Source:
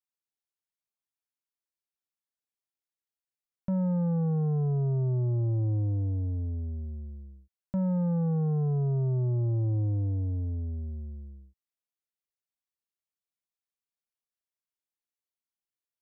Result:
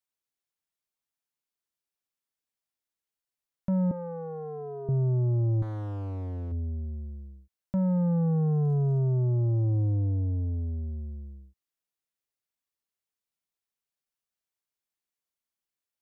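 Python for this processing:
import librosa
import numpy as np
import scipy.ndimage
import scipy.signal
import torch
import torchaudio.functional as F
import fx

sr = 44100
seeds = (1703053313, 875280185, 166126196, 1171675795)

y = fx.highpass(x, sr, hz=270.0, slope=24, at=(3.91, 4.89))
y = fx.clip_asym(y, sr, top_db=-42.0, bottom_db=-31.0, at=(5.62, 6.52))
y = fx.dmg_crackle(y, sr, seeds[0], per_s=74.0, level_db=-56.0, at=(8.53, 9.1), fade=0.02)
y = y * 10.0 ** (2.0 / 20.0)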